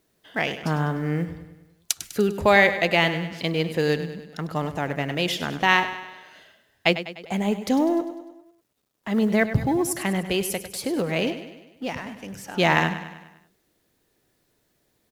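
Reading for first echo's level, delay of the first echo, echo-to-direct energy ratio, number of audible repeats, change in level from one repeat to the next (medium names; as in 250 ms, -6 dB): -12.0 dB, 100 ms, -10.5 dB, 5, -5.5 dB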